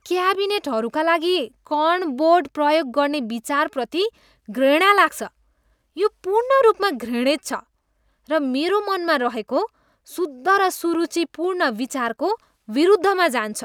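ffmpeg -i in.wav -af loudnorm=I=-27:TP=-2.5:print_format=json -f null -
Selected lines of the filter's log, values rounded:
"input_i" : "-20.5",
"input_tp" : "-1.9",
"input_lra" : "2.7",
"input_thresh" : "-30.9",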